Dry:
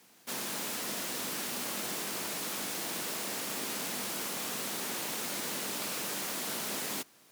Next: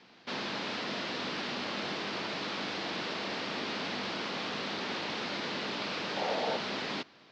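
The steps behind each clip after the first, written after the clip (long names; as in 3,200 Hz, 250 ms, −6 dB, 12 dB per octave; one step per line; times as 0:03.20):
Butterworth low-pass 4,700 Hz 36 dB per octave
in parallel at 0 dB: brickwall limiter −36.5 dBFS, peak gain reduction 10.5 dB
on the sum: gain on a spectral selection 0:06.17–0:06.56, 410–940 Hz +10 dB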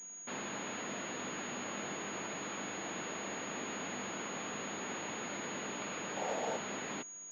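switching amplifier with a slow clock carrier 6,700 Hz
level −4.5 dB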